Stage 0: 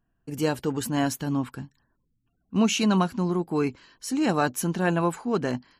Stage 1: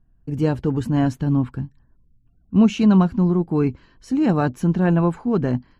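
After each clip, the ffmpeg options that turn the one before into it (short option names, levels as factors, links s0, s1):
-af "aemphasis=mode=reproduction:type=riaa"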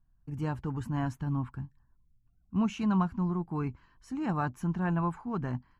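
-af "equalizer=f=250:t=o:w=1:g=-4,equalizer=f=500:t=o:w=1:g=-10,equalizer=f=1000:t=o:w=1:g=7,equalizer=f=4000:t=o:w=1:g=-6,volume=0.355"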